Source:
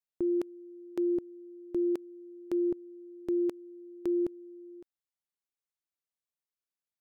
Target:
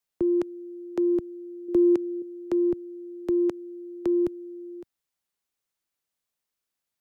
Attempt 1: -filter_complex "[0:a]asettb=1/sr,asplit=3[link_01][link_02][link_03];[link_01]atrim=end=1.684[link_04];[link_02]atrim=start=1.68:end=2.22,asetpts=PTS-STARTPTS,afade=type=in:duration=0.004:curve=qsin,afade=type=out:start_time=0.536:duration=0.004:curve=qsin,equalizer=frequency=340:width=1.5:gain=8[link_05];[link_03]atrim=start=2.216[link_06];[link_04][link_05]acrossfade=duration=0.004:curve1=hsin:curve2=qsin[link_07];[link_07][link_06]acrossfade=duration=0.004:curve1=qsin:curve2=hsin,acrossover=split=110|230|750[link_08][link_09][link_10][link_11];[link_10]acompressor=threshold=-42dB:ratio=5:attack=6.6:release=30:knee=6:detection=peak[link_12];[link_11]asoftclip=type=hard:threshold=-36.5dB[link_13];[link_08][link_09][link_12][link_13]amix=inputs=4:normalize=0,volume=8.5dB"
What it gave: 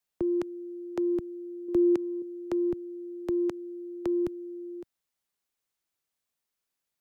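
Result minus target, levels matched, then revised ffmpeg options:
downward compressor: peak gain reduction +7 dB
-filter_complex "[0:a]asettb=1/sr,asplit=3[link_01][link_02][link_03];[link_01]atrim=end=1.684[link_04];[link_02]atrim=start=1.68:end=2.22,asetpts=PTS-STARTPTS,afade=type=in:duration=0.004:curve=qsin,afade=type=out:start_time=0.536:duration=0.004:curve=qsin,equalizer=frequency=340:width=1.5:gain=8[link_05];[link_03]atrim=start=2.216[link_06];[link_04][link_05]acrossfade=duration=0.004:curve1=hsin:curve2=qsin[link_07];[link_07][link_06]acrossfade=duration=0.004:curve1=qsin:curve2=hsin,acrossover=split=110|230|750[link_08][link_09][link_10][link_11];[link_10]acompressor=threshold=-33dB:ratio=5:attack=6.6:release=30:knee=6:detection=peak[link_12];[link_11]asoftclip=type=hard:threshold=-36.5dB[link_13];[link_08][link_09][link_12][link_13]amix=inputs=4:normalize=0,volume=8.5dB"

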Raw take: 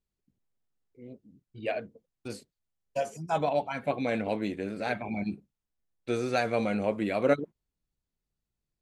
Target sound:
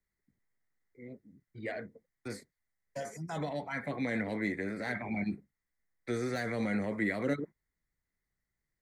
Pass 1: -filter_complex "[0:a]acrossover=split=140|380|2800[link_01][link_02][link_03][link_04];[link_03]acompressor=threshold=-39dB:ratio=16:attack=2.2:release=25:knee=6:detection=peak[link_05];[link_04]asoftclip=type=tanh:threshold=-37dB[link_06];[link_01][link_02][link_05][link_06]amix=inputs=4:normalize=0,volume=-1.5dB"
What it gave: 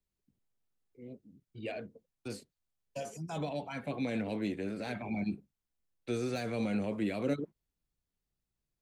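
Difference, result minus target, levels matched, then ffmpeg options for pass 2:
2,000 Hz band −6.5 dB
-filter_complex "[0:a]acrossover=split=140|380|2800[link_01][link_02][link_03][link_04];[link_03]acompressor=threshold=-39dB:ratio=16:attack=2.2:release=25:knee=6:detection=peak,lowpass=frequency=2000:width_type=q:width=8.8[link_05];[link_04]asoftclip=type=tanh:threshold=-37dB[link_06];[link_01][link_02][link_05][link_06]amix=inputs=4:normalize=0,volume=-1.5dB"

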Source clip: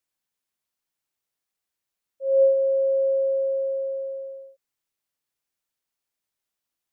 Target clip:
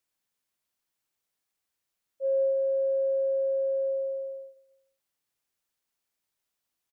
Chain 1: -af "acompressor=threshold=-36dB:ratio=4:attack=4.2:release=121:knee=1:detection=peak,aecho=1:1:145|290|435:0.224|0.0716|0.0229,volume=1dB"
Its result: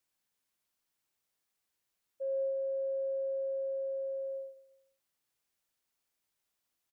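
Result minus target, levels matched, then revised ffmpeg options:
downward compressor: peak gain reduction +8 dB
-af "acompressor=threshold=-25.5dB:ratio=4:attack=4.2:release=121:knee=1:detection=peak,aecho=1:1:145|290|435:0.224|0.0716|0.0229,volume=1dB"

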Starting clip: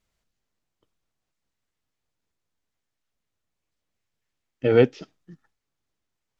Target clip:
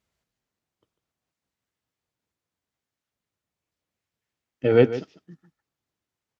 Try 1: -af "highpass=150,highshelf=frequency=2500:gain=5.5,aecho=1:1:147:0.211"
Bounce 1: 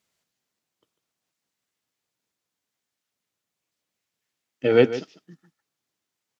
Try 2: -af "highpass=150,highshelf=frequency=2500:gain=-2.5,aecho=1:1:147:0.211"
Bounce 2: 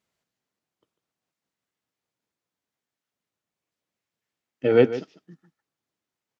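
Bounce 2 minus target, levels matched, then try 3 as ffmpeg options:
125 Hz band −4.5 dB
-af "highpass=65,highshelf=frequency=2500:gain=-2.5,aecho=1:1:147:0.211"

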